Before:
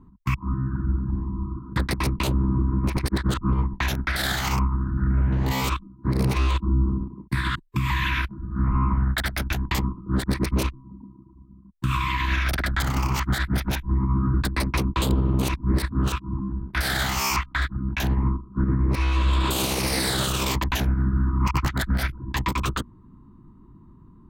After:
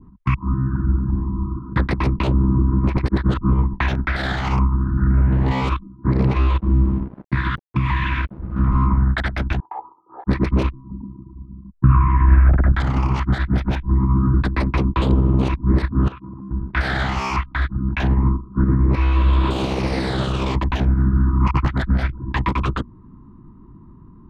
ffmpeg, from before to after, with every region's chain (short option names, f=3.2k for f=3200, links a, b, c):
-filter_complex "[0:a]asettb=1/sr,asplit=3[a][b][c];[a]atrim=end=6.154[d];[b]atrim=start=6.15:end=8.87,asetpts=PTS-STARTPTS,afade=t=in:d=0.004:c=qsin,afade=t=out:st=2.716:d=0.004:c=qsin,highshelf=f=9.7k:g=-8.5,aeval=exprs='sgn(val(0))*max(abs(val(0))-0.0075,0)':c=same[e];[c]atrim=start=8.866[f];[d][e]acrossfade=d=0.004:c1=hsin:c2=qsin[g];[g][f]acrossfade=d=0.004:c1=qsin:c2=hsin,asettb=1/sr,asplit=3[h][i][j];[h]atrim=end=9.604[k];[i]atrim=start=9.6:end=10.27,asetpts=PTS-STARTPTS,afade=t=in:d=0.004:c=qsin,afade=t=out:st=0.666:d=0.004:c=qsin,asuperpass=centerf=760:order=4:qfactor=2.5,aecho=1:1:2.4:0.79,atrim=end_sample=29547[l];[j]atrim=start=10.266[m];[k][l]acrossfade=d=0.004:c1=hsin:c2=qsin[n];[n][m]acrossfade=d=0.004:c1=qsin:c2=hsin,asettb=1/sr,asplit=3[o][p][q];[o]atrim=end=10.904[r];[p]atrim=start=10.9:end=12.72,asetpts=PTS-STARTPTS,afade=t=in:d=0.004:c=qsin,afade=t=out:st=1.816:d=0.004:c=qsin,lowpass=f=1.6k:w=0.5412,lowpass=f=1.6k:w=1.3066,lowshelf=f=190:g=9[s];[q]atrim=start=12.716[t];[r][s]acrossfade=d=0.004:c1=hsin:c2=qsin[u];[u][t]acrossfade=d=0.004:c1=qsin:c2=hsin,asettb=1/sr,asplit=3[v][w][x];[v]atrim=end=16.084[y];[w]atrim=start=16.08:end=16.51,asetpts=PTS-STARTPTS,afade=t=in:d=0.004:c=qsin,afade=t=out:st=0.426:d=0.004:c=qsin,highpass=100,lowpass=3.1k,acompressor=threshold=-36dB:ratio=10:attack=3.2:release=140:knee=1:detection=peak[z];[x]atrim=start=16.506[aa];[y][z]acrossfade=d=0.004:c1=hsin:c2=qsin[ab];[ab][aa]acrossfade=d=0.004:c1=qsin:c2=hsin,adynamicequalizer=threshold=0.0112:dfrequency=1700:dqfactor=0.76:tfrequency=1700:tqfactor=0.76:attack=5:release=100:ratio=0.375:range=3:mode=cutabove:tftype=bell,lowpass=2.4k,volume=5.5dB"